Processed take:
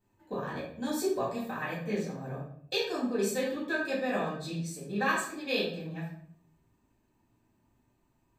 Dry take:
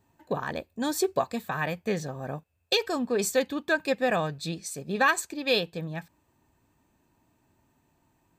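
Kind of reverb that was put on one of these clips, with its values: shoebox room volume 100 m³, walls mixed, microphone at 2 m; gain -13.5 dB

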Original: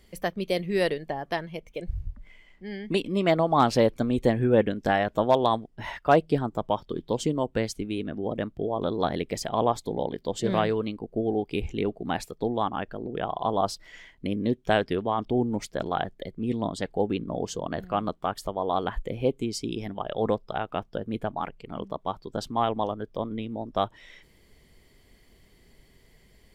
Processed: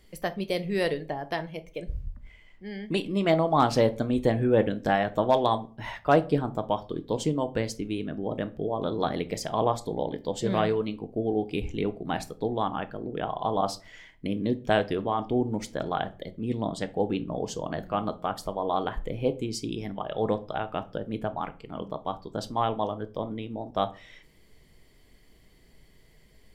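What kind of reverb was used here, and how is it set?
shoebox room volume 240 m³, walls furnished, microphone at 0.51 m; gain -1.5 dB

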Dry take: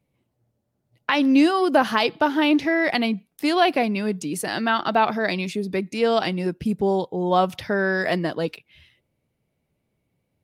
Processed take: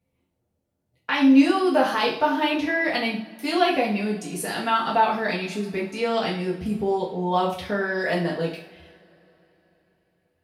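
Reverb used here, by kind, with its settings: two-slope reverb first 0.49 s, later 3.8 s, from -27 dB, DRR -4.5 dB; gain -7 dB

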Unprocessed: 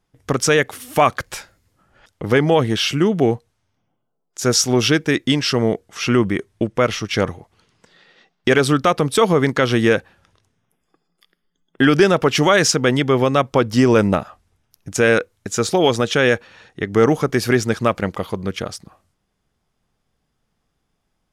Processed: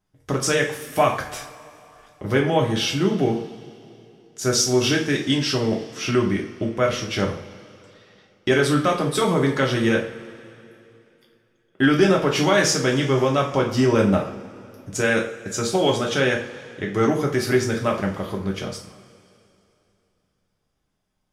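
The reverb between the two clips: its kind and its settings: two-slope reverb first 0.39 s, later 2.9 s, from -21 dB, DRR -1 dB; gain -7.5 dB

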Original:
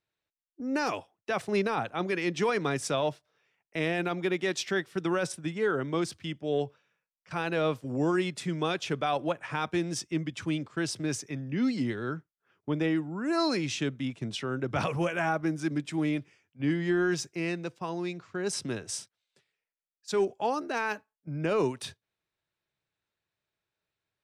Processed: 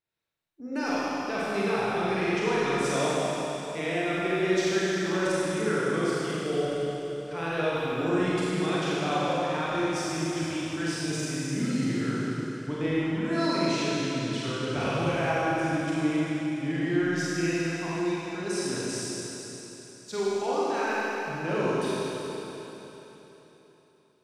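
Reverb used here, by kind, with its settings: Schroeder reverb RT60 3.7 s, combs from 33 ms, DRR -8.5 dB; gain -6 dB

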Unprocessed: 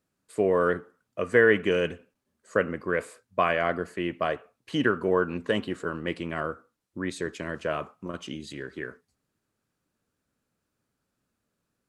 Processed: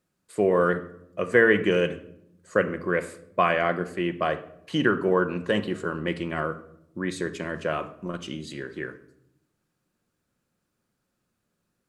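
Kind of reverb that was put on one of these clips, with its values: shoebox room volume 2000 m³, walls furnished, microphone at 0.92 m; gain +1.5 dB

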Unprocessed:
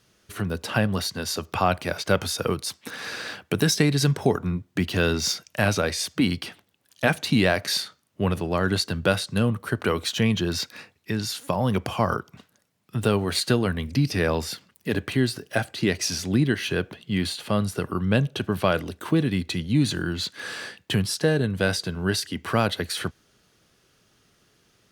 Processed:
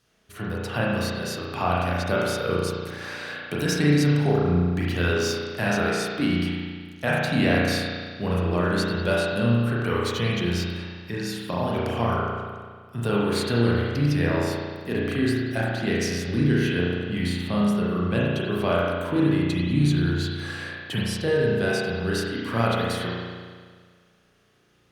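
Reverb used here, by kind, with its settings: spring tank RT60 1.7 s, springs 34 ms, chirp 65 ms, DRR -6 dB; gain -6.5 dB

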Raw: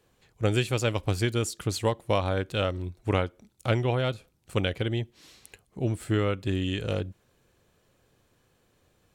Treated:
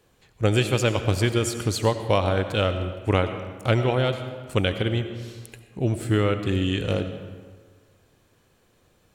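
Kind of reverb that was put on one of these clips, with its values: digital reverb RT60 1.6 s, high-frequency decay 0.65×, pre-delay 50 ms, DRR 8.5 dB; gain +4 dB

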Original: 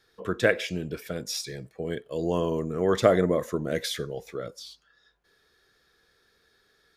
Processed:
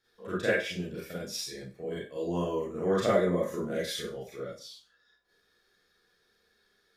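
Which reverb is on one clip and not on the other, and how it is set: Schroeder reverb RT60 0.32 s, combs from 31 ms, DRR -8 dB; gain -12.5 dB

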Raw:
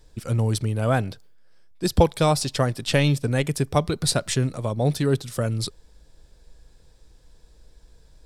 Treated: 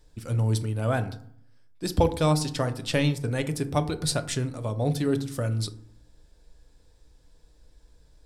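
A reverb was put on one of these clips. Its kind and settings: FDN reverb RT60 0.62 s, low-frequency decay 1.35×, high-frequency decay 0.45×, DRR 8.5 dB; gain -5 dB

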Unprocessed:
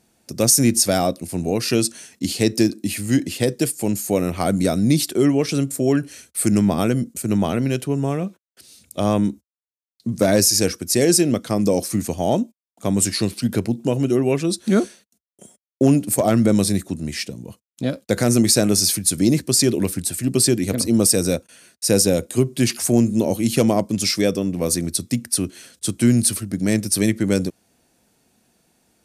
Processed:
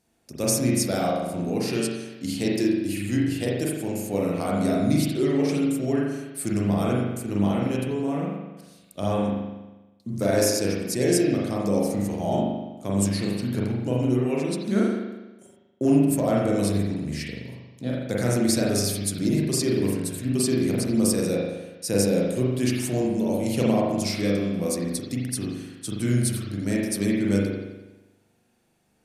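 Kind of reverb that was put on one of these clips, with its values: spring tank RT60 1.1 s, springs 40 ms, chirp 50 ms, DRR -4.5 dB; gain -10 dB

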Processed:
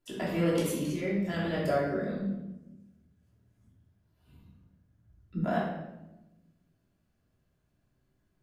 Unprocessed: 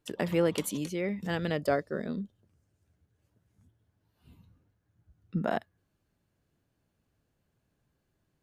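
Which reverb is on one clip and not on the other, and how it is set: shoebox room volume 390 m³, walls mixed, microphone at 3 m; gain -8 dB

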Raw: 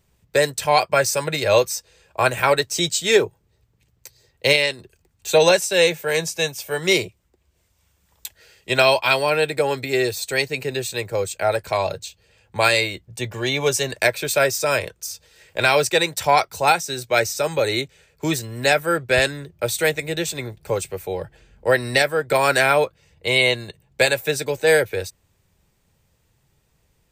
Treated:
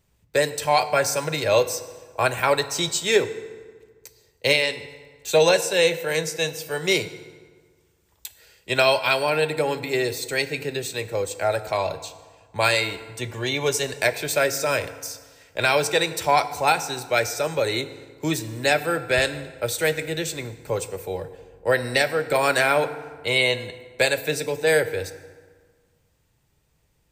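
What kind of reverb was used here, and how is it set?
FDN reverb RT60 1.6 s, low-frequency decay 1.05×, high-frequency decay 0.65×, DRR 11 dB; gain -3 dB

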